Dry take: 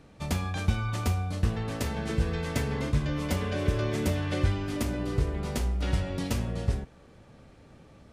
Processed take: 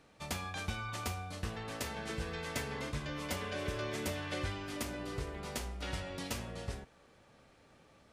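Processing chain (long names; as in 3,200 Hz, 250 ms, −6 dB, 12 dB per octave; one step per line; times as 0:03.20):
low-shelf EQ 380 Hz −12 dB
level −3 dB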